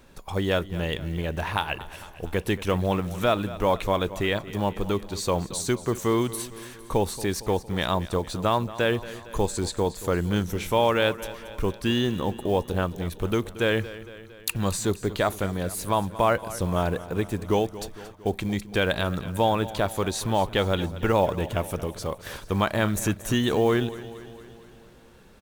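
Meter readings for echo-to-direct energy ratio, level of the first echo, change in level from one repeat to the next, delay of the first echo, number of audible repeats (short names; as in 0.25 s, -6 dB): -14.0 dB, -16.0 dB, -4.5 dB, 0.229 s, 5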